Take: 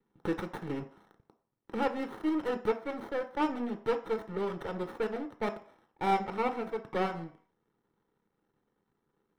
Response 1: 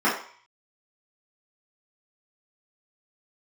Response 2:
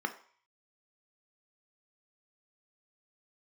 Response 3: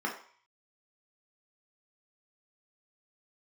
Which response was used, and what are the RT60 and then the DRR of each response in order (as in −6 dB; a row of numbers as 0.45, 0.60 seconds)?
2; 0.50, 0.50, 0.50 seconds; −11.5, 6.5, −2.0 decibels